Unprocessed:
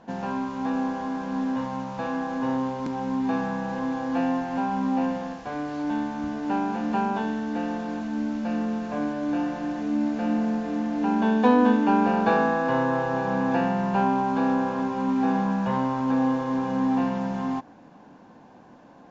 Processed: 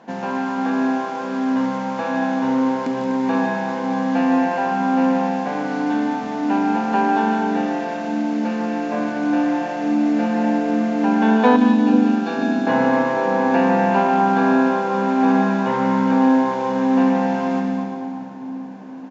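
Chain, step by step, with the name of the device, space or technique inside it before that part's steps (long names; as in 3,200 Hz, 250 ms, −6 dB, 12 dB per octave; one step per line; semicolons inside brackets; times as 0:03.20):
stadium PA (high-pass filter 190 Hz 12 dB per octave; parametric band 2,100 Hz +4 dB 0.46 octaves; loudspeakers that aren't time-aligned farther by 51 metres −9 dB, 85 metres −10 dB; convolution reverb RT60 2.9 s, pre-delay 56 ms, DRR 6.5 dB)
0:11.56–0:12.67: octave-band graphic EQ 125/250/500/1,000/2,000 Hz −12/+5/−10/−11/−9 dB
echo with a time of its own for lows and highs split 610 Hz, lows 486 ms, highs 175 ms, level −9.5 dB
level +5 dB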